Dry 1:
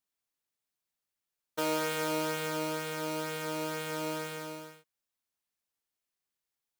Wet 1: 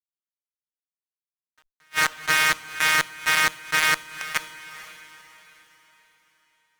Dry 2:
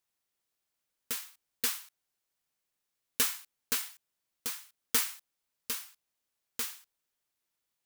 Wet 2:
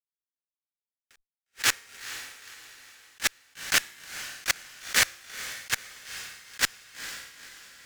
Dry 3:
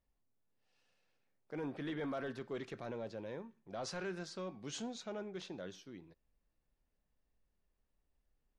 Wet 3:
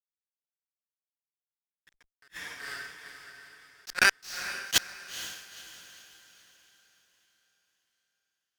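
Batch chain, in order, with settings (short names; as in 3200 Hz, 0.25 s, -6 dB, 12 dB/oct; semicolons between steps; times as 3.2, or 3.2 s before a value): Wiener smoothing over 15 samples; LPF 7600 Hz 24 dB/oct; compressor 20:1, threshold -39 dBFS; resonant high-pass 1700 Hz, resonance Q 2.9; level quantiser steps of 23 dB; fuzz box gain 46 dB, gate -46 dBFS; diffused feedback echo 0.482 s, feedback 42%, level -14 dB; attack slew limiter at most 490 dB/s; gain +3.5 dB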